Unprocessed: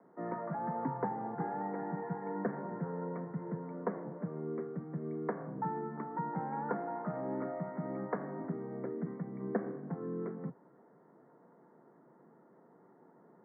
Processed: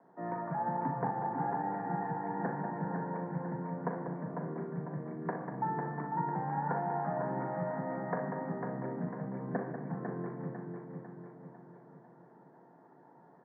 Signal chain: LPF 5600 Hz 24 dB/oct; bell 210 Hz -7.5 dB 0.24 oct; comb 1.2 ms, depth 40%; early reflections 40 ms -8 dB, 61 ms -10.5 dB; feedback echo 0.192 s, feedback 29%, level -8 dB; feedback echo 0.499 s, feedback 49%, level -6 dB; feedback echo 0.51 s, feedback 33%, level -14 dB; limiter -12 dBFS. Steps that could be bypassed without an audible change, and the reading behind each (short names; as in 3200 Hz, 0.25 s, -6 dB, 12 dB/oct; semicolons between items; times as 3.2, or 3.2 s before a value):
LPF 5600 Hz: input band ends at 1900 Hz; limiter -12 dBFS: input peak -19.5 dBFS